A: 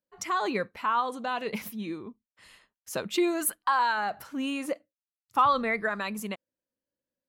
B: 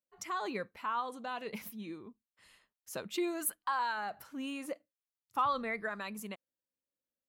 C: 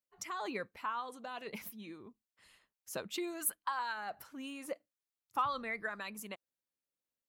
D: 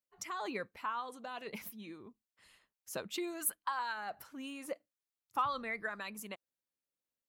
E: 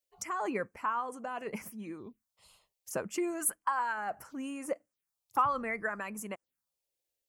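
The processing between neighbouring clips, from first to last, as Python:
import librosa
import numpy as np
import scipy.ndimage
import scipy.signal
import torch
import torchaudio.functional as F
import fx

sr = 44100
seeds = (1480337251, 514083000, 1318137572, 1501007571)

y1 = fx.high_shelf(x, sr, hz=11000.0, db=5.0)
y1 = y1 * librosa.db_to_amplitude(-8.5)
y2 = fx.hpss(y1, sr, part='percussive', gain_db=6)
y2 = y2 * librosa.db_to_amplitude(-5.5)
y3 = y2
y4 = fx.env_phaser(y3, sr, low_hz=200.0, high_hz=3800.0, full_db=-44.5)
y4 = y4 * librosa.db_to_amplitude(6.5)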